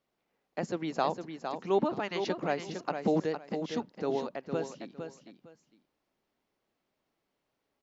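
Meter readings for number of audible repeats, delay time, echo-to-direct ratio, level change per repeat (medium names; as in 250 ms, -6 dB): 2, 458 ms, -7.5 dB, -13.5 dB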